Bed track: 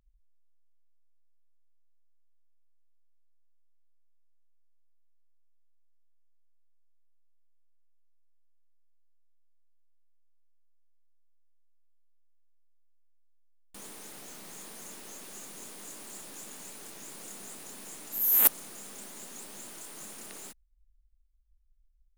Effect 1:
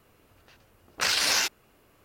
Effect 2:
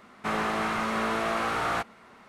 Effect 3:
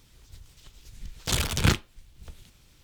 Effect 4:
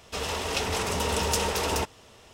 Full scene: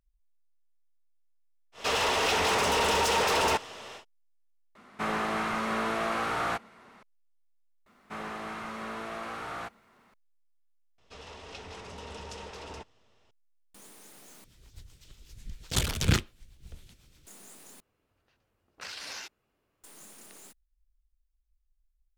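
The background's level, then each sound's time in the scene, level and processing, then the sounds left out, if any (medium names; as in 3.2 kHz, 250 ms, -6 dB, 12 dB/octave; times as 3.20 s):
bed track -6 dB
1.72 s: add 4 -5 dB, fades 0.10 s + overdrive pedal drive 24 dB, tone 3 kHz, clips at -11.5 dBFS
4.75 s: replace with 2 -2 dB + peaking EQ 70 Hz -2.5 dB
7.86 s: replace with 2 -10 dB + added noise pink -66 dBFS
10.98 s: add 4 -15.5 dB + low-pass 5.5 kHz
14.44 s: replace with 3 -0.5 dB + rotary cabinet horn 8 Hz
17.80 s: replace with 1 -15.5 dB + treble shelf 9.6 kHz -9.5 dB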